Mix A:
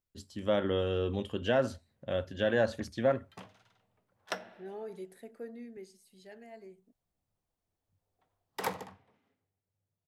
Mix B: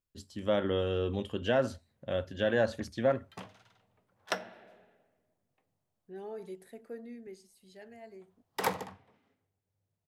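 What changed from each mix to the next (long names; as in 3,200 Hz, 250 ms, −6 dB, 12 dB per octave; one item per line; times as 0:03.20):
second voice: entry +1.50 s
background +3.5 dB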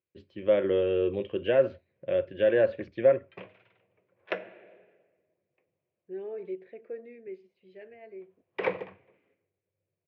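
master: add loudspeaker in its box 120–2,800 Hz, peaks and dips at 240 Hz −9 dB, 360 Hz +9 dB, 530 Hz +8 dB, 830 Hz −8 dB, 1,300 Hz −5 dB, 2,400 Hz +9 dB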